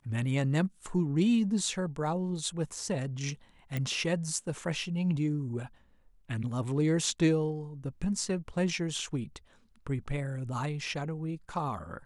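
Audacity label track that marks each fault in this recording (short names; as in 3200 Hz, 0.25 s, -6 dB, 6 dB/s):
3.770000	3.770000	pop -20 dBFS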